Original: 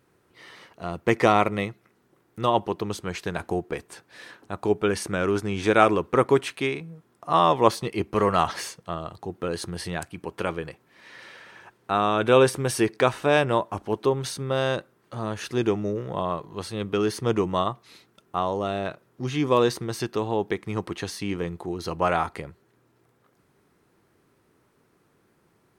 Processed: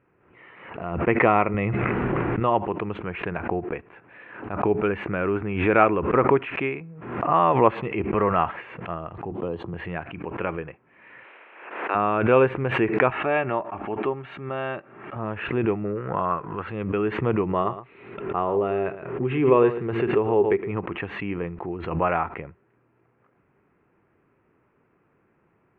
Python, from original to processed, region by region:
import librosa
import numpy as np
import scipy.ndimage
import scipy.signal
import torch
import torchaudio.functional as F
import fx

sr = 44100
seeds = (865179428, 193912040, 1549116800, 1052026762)

y = fx.chain(x, sr, fx.low_shelf(hz=120.0, db=8.5),
    fx.env_flatten(amount_pct=100), at=(1.54, 2.4))
y = fx.chain(y, sr, fx.band_shelf(hz=1900.0, db=-14.5, octaves=1.2),
    fx.band_squash(depth_pct=40), at=(9.31, 9.74))
y = fx.spec_clip(y, sr, under_db=14, at=(11.23, 11.94), fade=0.02)
y = fx.highpass(y, sr, hz=310.0, slope=24, at=(11.23, 11.94), fade=0.02)
y = fx.chain(y, sr, fx.low_shelf(hz=250.0, db=-9.0),
    fx.notch_comb(f0_hz=500.0), at=(13.1, 15.16))
y = fx.chain(y, sr, fx.peak_eq(hz=1400.0, db=12.0, octaves=0.66),
    fx.notch(hz=600.0, q=15.0), at=(15.85, 16.68))
y = fx.chain(y, sr, fx.peak_eq(hz=400.0, db=11.0, octaves=0.27),
    fx.echo_single(ms=114, db=-12.5), at=(17.49, 20.71))
y = scipy.signal.sosfilt(scipy.signal.ellip(4, 1.0, 50, 2600.0, 'lowpass', fs=sr, output='sos'), y)
y = fx.pre_swell(y, sr, db_per_s=65.0)